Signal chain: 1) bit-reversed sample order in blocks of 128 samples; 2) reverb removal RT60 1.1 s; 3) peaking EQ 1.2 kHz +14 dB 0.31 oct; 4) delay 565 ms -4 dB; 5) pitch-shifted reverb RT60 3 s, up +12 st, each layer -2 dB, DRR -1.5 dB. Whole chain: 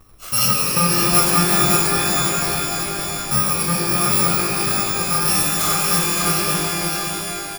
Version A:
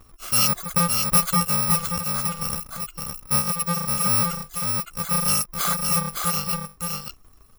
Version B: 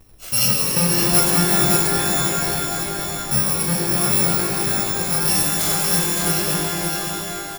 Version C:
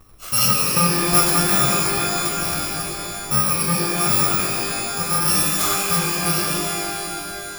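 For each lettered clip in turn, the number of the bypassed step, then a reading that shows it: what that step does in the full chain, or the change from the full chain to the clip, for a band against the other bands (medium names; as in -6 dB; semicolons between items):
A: 5, 500 Hz band -4.0 dB; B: 3, 1 kHz band -4.0 dB; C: 4, momentary loudness spread change +1 LU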